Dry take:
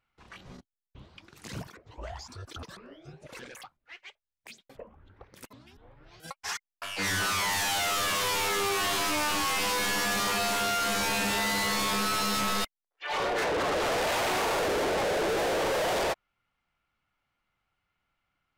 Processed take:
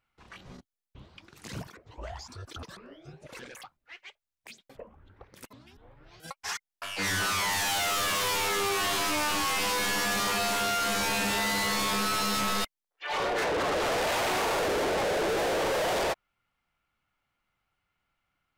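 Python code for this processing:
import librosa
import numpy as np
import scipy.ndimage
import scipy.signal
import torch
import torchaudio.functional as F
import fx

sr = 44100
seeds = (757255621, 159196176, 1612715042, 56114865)

y = fx.crossing_spikes(x, sr, level_db=-44.0, at=(7.66, 8.37))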